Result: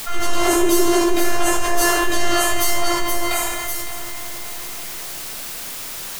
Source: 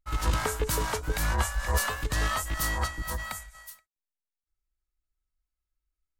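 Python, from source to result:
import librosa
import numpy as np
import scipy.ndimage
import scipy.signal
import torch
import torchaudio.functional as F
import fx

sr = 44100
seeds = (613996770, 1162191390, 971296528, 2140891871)

p1 = fx.low_shelf_res(x, sr, hz=270.0, db=-12.5, q=3.0)
p2 = p1 + fx.echo_heads(p1, sr, ms=279, heads='first and second', feedback_pct=50, wet_db=-22.5, dry=0)
p3 = fx.robotise(p2, sr, hz=346.0)
p4 = fx.room_shoebox(p3, sr, seeds[0], volume_m3=510.0, walls='mixed', distance_m=6.4)
p5 = fx.quant_dither(p4, sr, seeds[1], bits=8, dither='triangular')
p6 = fx.env_flatten(p5, sr, amount_pct=50)
y = F.gain(torch.from_numpy(p6), -2.5).numpy()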